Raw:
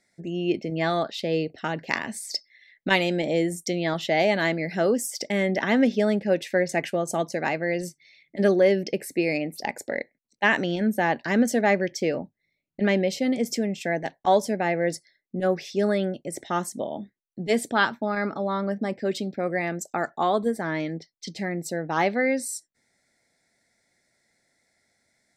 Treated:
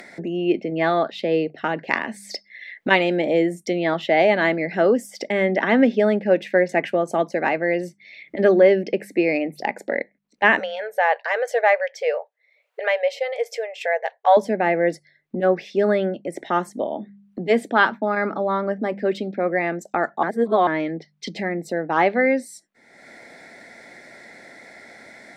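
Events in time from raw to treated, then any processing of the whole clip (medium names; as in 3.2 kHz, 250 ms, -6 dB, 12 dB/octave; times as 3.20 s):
10.59–14.37 s: brick-wall FIR high-pass 430 Hz
20.23–20.67 s: reverse
whole clip: three-band isolator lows -15 dB, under 190 Hz, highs -16 dB, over 3.1 kHz; de-hum 50.14 Hz, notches 4; upward compressor, threshold -30 dBFS; trim +5.5 dB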